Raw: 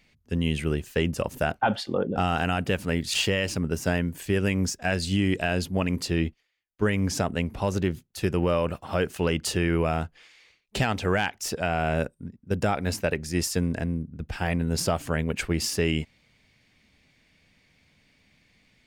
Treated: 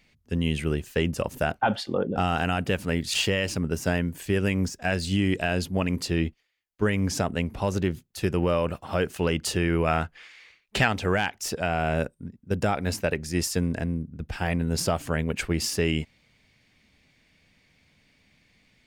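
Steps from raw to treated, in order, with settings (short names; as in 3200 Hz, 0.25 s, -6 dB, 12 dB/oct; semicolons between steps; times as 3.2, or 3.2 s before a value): 4.13–5.05 de-esser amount 65%; 9.87–10.88 bell 1700 Hz +7.5 dB 1.9 oct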